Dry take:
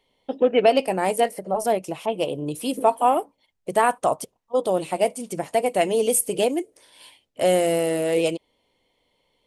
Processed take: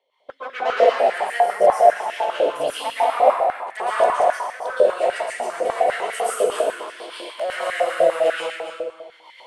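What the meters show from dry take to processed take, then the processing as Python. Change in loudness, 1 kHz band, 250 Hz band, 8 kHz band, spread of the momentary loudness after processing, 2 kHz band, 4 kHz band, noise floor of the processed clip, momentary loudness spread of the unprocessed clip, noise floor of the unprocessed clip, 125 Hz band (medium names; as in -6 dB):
+2.0 dB, +4.5 dB, -13.0 dB, -7.0 dB, 13 LU, +6.0 dB, +0.5 dB, -50 dBFS, 9 LU, -72 dBFS, under -15 dB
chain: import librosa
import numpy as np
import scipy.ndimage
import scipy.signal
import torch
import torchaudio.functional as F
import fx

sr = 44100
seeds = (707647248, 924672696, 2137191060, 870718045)

p1 = fx.recorder_agc(x, sr, target_db=-14.0, rise_db_per_s=21.0, max_gain_db=30)
p2 = fx.quant_float(p1, sr, bits=2)
p3 = p1 + F.gain(torch.from_numpy(p2), -12.0).numpy()
p4 = fx.rotary_switch(p3, sr, hz=1.2, then_hz=8.0, switch_at_s=2.21)
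p5 = 10.0 ** (-19.5 / 20.0) * np.tanh(p4 / 10.0 ** (-19.5 / 20.0))
p6 = fx.air_absorb(p5, sr, metres=54.0)
p7 = p6 + fx.echo_single(p6, sr, ms=276, db=-9.0, dry=0)
p8 = fx.rev_plate(p7, sr, seeds[0], rt60_s=1.4, hf_ratio=0.65, predelay_ms=105, drr_db=-9.5)
p9 = fx.filter_held_highpass(p8, sr, hz=10.0, low_hz=570.0, high_hz=1800.0)
y = F.gain(torch.from_numpy(p9), -6.5).numpy()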